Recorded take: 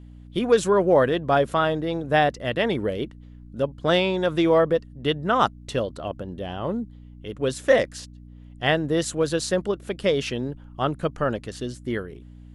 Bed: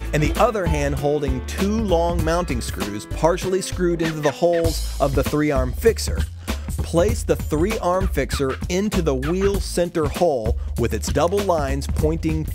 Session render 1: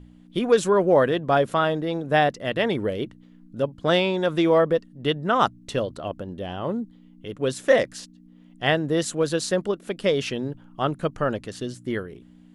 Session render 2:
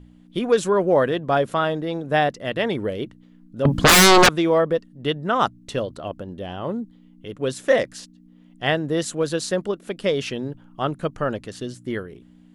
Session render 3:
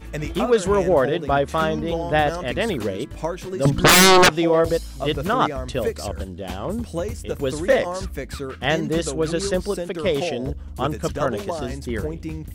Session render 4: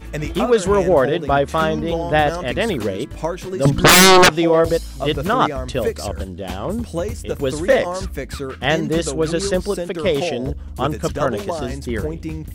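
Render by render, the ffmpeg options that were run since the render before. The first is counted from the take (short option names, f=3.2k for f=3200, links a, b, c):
-af "bandreject=f=60:t=h:w=4,bandreject=f=120:t=h:w=4"
-filter_complex "[0:a]asettb=1/sr,asplit=3[a][b][c];[a]atrim=end=3.654[d];[b]atrim=start=3.65:end=4.29,asetpts=PTS-STARTPTS,afade=t=in:d=0.004:c=qsin,afade=t=out:st=0.636:d=0.004:c=qsin,aeval=exprs='0.376*sin(PI/2*7.94*val(0)/0.376)':c=same[e];[c]atrim=start=4.286[f];[d][e]acrossfade=d=0.004:c1=hsin:c2=qsin[g];[g][f]acrossfade=d=0.004:c1=qsin:c2=hsin"
-filter_complex "[1:a]volume=-9dB[a];[0:a][a]amix=inputs=2:normalize=0"
-af "volume=3dB,alimiter=limit=-3dB:level=0:latency=1"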